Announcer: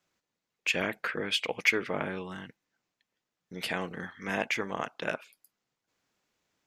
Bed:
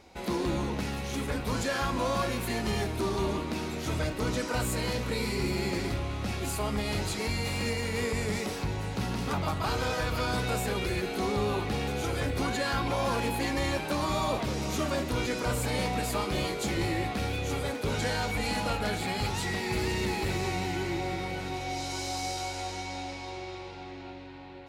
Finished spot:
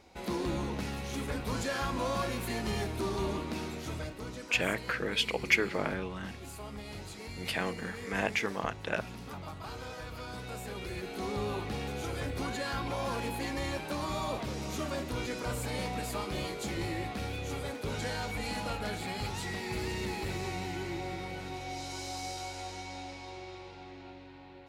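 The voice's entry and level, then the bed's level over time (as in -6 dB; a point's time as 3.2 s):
3.85 s, -0.5 dB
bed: 3.64 s -3.5 dB
4.34 s -12.5 dB
10.36 s -12.5 dB
11.37 s -5.5 dB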